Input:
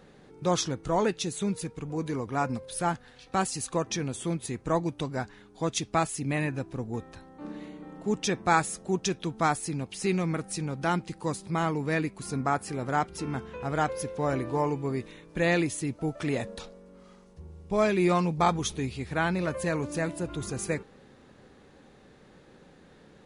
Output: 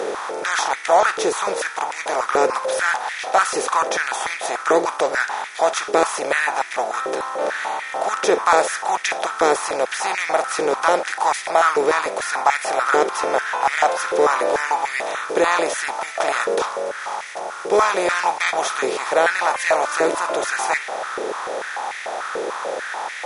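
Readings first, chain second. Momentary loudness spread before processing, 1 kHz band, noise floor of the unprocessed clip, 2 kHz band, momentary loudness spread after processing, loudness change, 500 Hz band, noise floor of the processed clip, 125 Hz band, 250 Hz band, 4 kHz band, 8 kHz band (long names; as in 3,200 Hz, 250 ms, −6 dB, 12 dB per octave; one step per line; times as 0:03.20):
10 LU, +12.5 dB, −55 dBFS, +14.0 dB, 9 LU, +9.0 dB, +11.0 dB, −32 dBFS, below −15 dB, −2.5 dB, +10.0 dB, +8.5 dB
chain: compressor on every frequency bin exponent 0.4
high-pass on a step sequencer 6.8 Hz 440–2,000 Hz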